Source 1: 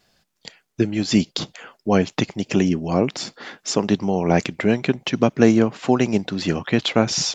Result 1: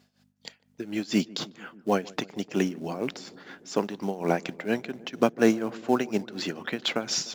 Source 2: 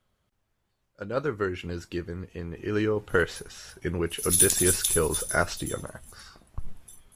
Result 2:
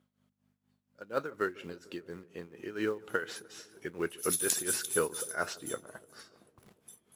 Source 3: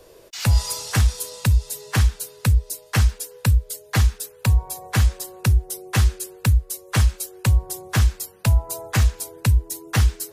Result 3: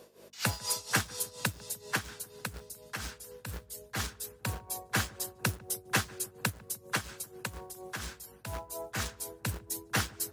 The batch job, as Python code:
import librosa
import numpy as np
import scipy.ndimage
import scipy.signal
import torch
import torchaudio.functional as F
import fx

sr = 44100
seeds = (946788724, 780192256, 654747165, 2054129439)

p1 = fx.quant_float(x, sr, bits=2)
p2 = x + (p1 * librosa.db_to_amplitude(-7.0))
p3 = fx.add_hum(p2, sr, base_hz=50, snr_db=28)
p4 = fx.dynamic_eq(p3, sr, hz=1500.0, q=4.6, threshold_db=-43.0, ratio=4.0, max_db=5)
p5 = p4 * (1.0 - 0.81 / 2.0 + 0.81 / 2.0 * np.cos(2.0 * np.pi * 4.2 * (np.arange(len(p4)) / sr)))
p6 = scipy.signal.sosfilt(scipy.signal.butter(2, 220.0, 'highpass', fs=sr, output='sos'), p5)
p7 = p6 + fx.echo_filtered(p6, sr, ms=149, feedback_pct=81, hz=1100.0, wet_db=-21, dry=0)
y = p7 * librosa.db_to_amplitude(-6.5)